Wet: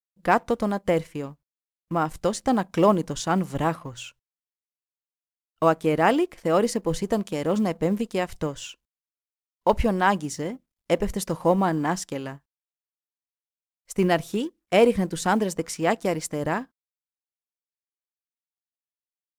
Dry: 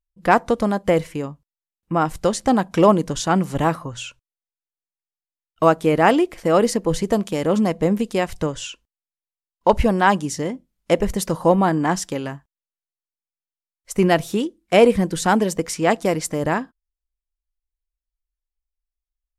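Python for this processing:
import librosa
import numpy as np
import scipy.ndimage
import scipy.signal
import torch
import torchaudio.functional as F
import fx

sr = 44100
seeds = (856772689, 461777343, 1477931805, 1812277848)

y = fx.law_mismatch(x, sr, coded='A')
y = F.gain(torch.from_numpy(y), -4.5).numpy()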